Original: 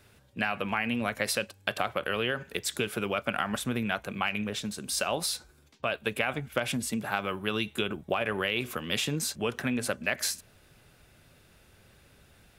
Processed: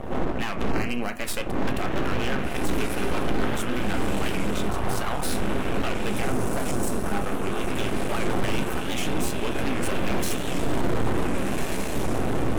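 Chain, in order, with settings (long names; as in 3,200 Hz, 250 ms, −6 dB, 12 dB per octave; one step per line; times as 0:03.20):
wind on the microphone 400 Hz −27 dBFS
feedback delay with all-pass diffusion 1,567 ms, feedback 51%, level −4 dB
0:06.22–0:07.68: gain on a spectral selection 1,500–5,300 Hz −7 dB
in parallel at −3 dB: brickwall limiter −17.5 dBFS, peak gain reduction 10 dB
0:04.69–0:05.23: on the sum: graphic EQ with 10 bands 250 Hz −10 dB, 500 Hz −5 dB, 1,000 Hz +8 dB, 2,000 Hz −10 dB, 8,000 Hz −5 dB
half-wave rectification
parametric band 4,700 Hz −6 dB 0.58 octaves
on a send at −8.5 dB: convolution reverb RT60 0.30 s, pre-delay 3 ms
on the sum: gain into a clipping stage and back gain 16 dB
0:00.70–0:01.19: Butterworth band-reject 3,500 Hz, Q 5.3
wow of a warped record 78 rpm, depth 160 cents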